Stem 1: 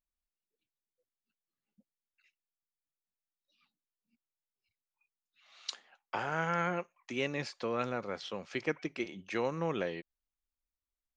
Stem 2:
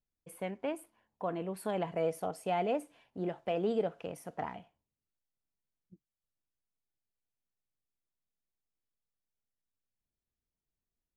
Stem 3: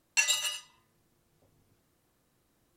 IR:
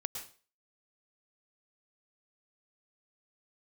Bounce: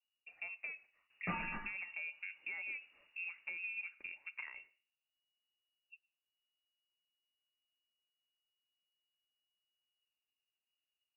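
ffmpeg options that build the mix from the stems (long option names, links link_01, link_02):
-filter_complex "[1:a]acompressor=threshold=-39dB:ratio=4,volume=-6dB,asplit=2[link_01][link_02];[link_02]volume=-20.5dB[link_03];[2:a]asoftclip=type=tanh:threshold=-25dB,adelay=1100,volume=-1dB[link_04];[3:a]atrim=start_sample=2205[link_05];[link_03][link_05]afir=irnorm=-1:irlink=0[link_06];[link_01][link_04][link_06]amix=inputs=3:normalize=0,lowshelf=frequency=430:gain=4,lowpass=frequency=2500:width_type=q:width=0.5098,lowpass=frequency=2500:width_type=q:width=0.6013,lowpass=frequency=2500:width_type=q:width=0.9,lowpass=frequency=2500:width_type=q:width=2.563,afreqshift=-2900"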